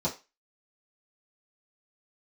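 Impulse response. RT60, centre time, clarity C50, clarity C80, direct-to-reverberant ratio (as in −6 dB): 0.25 s, 16 ms, 13.0 dB, 19.5 dB, −8.5 dB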